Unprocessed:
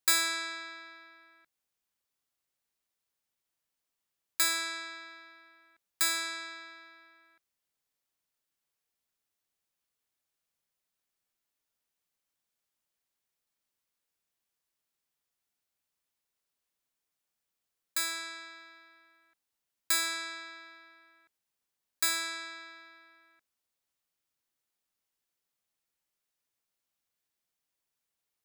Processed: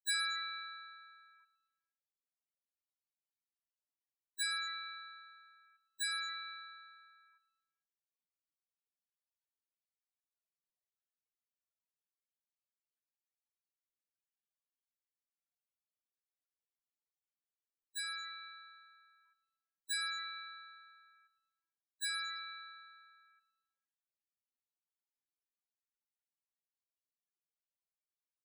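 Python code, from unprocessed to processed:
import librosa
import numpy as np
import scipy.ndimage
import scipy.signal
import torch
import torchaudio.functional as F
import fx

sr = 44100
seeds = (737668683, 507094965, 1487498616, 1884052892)

y = fx.echo_feedback(x, sr, ms=113, feedback_pct=57, wet_db=-16)
y = fx.spec_topn(y, sr, count=8)
y = y * 10.0 ** (-3.5 / 20.0)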